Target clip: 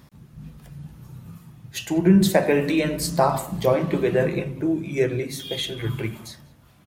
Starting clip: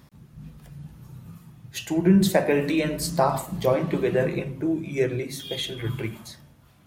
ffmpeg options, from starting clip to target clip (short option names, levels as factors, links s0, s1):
-filter_complex "[0:a]asplit=2[s0][s1];[s1]adelay=192.4,volume=0.0708,highshelf=f=4000:g=-4.33[s2];[s0][s2]amix=inputs=2:normalize=0,volume=1.26"